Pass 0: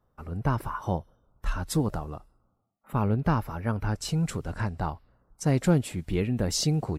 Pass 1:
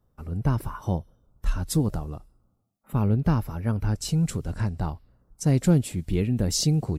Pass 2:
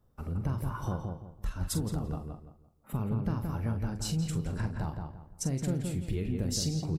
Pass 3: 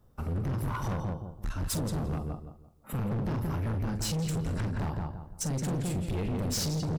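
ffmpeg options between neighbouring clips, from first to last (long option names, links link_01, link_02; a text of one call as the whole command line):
ffmpeg -i in.wav -af "equalizer=frequency=1200:width_type=o:width=3:gain=-9,volume=4.5dB" out.wav
ffmpeg -i in.wav -filter_complex "[0:a]acompressor=threshold=-31dB:ratio=4,asplit=2[link_01][link_02];[link_02]adelay=44,volume=-9dB[link_03];[link_01][link_03]amix=inputs=2:normalize=0,asplit=2[link_04][link_05];[link_05]adelay=170,lowpass=frequency=2200:poles=1,volume=-4dB,asplit=2[link_06][link_07];[link_07]adelay=170,lowpass=frequency=2200:poles=1,volume=0.31,asplit=2[link_08][link_09];[link_09]adelay=170,lowpass=frequency=2200:poles=1,volume=0.31,asplit=2[link_10][link_11];[link_11]adelay=170,lowpass=frequency=2200:poles=1,volume=0.31[link_12];[link_06][link_08][link_10][link_12]amix=inputs=4:normalize=0[link_13];[link_04][link_13]amix=inputs=2:normalize=0" out.wav
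ffmpeg -i in.wav -af "asoftclip=type=hard:threshold=-34.5dB,volume=6dB" out.wav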